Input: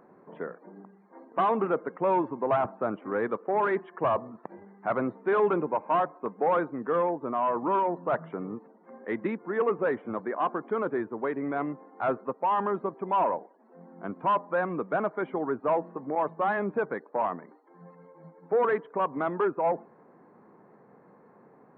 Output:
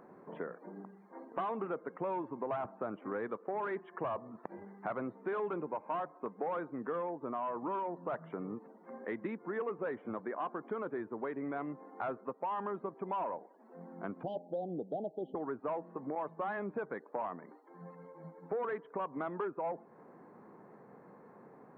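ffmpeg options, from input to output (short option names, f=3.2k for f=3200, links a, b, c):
-filter_complex "[0:a]asettb=1/sr,asplit=3[a][b][c];[a]atrim=end=14.234[d];[b]atrim=start=14.23:end=15.35,asetpts=PTS-STARTPTS,afade=t=in:d=0.004:c=qsin,afade=t=out:st=1.116:d=0.004:c=qsin,asuperstop=centerf=1600:order=20:qfactor=0.7[e];[c]atrim=start=15.346[f];[d][e]acrossfade=d=0.004:c1=hsin:c2=qsin[g];[g][f]acrossfade=d=0.004:c1=qsin:c2=hsin,acompressor=threshold=-38dB:ratio=3"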